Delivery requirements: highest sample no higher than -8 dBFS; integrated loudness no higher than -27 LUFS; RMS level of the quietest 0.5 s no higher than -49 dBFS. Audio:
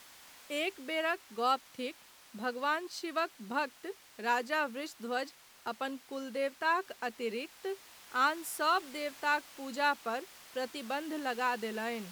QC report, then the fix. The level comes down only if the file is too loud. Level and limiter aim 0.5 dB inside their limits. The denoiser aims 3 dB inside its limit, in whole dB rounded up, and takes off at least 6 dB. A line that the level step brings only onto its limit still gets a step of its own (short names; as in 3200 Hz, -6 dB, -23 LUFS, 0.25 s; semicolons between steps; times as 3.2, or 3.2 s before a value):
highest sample -18.5 dBFS: OK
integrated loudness -35.0 LUFS: OK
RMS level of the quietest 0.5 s -55 dBFS: OK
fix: none